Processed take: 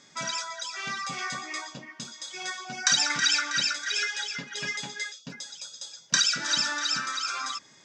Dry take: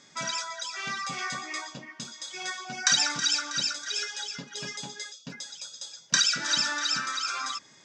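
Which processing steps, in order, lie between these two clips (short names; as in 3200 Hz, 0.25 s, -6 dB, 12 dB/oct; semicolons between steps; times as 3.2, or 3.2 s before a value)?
3.1–5.2 bell 2000 Hz +10 dB 1 oct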